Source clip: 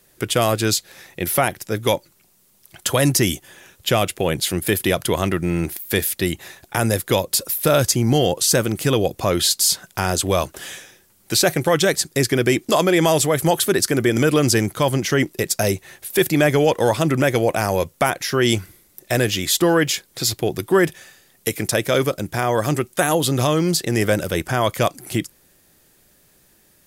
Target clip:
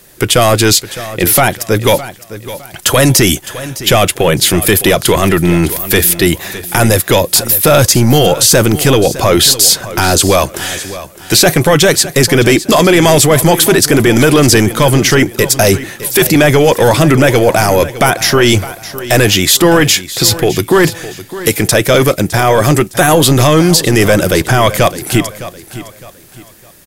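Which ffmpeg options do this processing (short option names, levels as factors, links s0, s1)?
-filter_complex "[0:a]apsyclip=7.08,asplit=2[s0][s1];[s1]aecho=0:1:610|1220|1830:0.178|0.0587|0.0194[s2];[s0][s2]amix=inputs=2:normalize=0,volume=0.708"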